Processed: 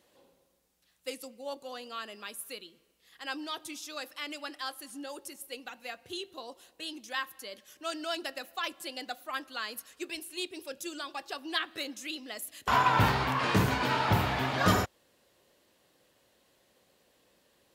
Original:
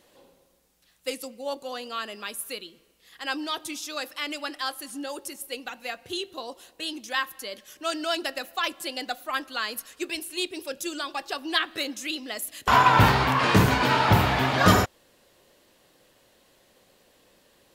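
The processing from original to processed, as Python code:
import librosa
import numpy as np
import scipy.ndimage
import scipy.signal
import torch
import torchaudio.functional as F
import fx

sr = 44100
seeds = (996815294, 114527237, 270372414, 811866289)

y = scipy.signal.sosfilt(scipy.signal.butter(2, 43.0, 'highpass', fs=sr, output='sos'), x)
y = F.gain(torch.from_numpy(y), -7.0).numpy()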